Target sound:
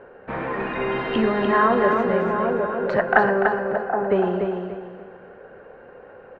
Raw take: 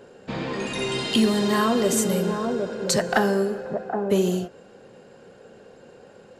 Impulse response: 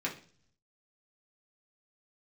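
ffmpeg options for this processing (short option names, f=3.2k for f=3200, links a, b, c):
-af "lowpass=f=1.9k:w=0.5412,lowpass=f=1.9k:w=1.3066,equalizer=f=180:t=o:w=2.6:g=-12,aecho=1:1:293|586|879|1172:0.562|0.18|0.0576|0.0184,volume=8dB"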